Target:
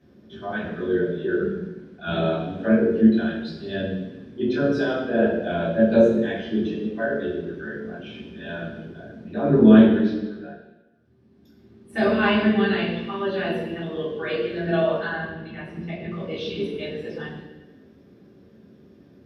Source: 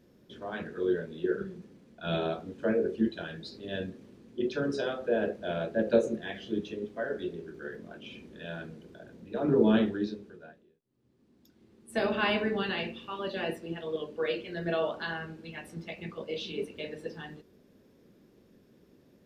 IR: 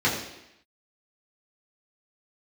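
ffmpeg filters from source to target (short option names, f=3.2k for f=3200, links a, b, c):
-filter_complex "[0:a]asettb=1/sr,asplit=3[a][b][c];[a]atrim=end=14.994[d];[b]atrim=start=14.99:end=16.11,asetpts=PTS-STARTPTS,afade=t=in:d=0.004:c=qsin,afade=t=out:st=1.116:d=0.004:c=qsin,lowpass=f=2.4k:p=1[e];[c]atrim=start=16.106[f];[d][e]acrossfade=d=0.004:c1=hsin:c2=qsin[g];[g][f]acrossfade=d=0.004:c1=qsin:c2=hsin[h];[1:a]atrim=start_sample=2205,asetrate=34839,aresample=44100[i];[h][i]afir=irnorm=-1:irlink=0,volume=-10dB"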